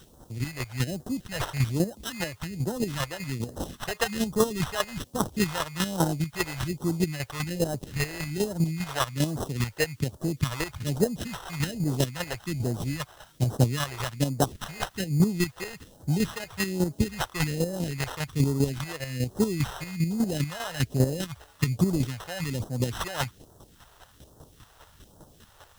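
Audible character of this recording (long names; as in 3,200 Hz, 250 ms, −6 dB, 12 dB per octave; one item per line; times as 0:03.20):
aliases and images of a low sample rate 2,300 Hz, jitter 0%
chopped level 5 Hz, depth 60%, duty 20%
a quantiser's noise floor 12 bits, dither triangular
phaser sweep stages 2, 1.2 Hz, lowest notch 210–2,300 Hz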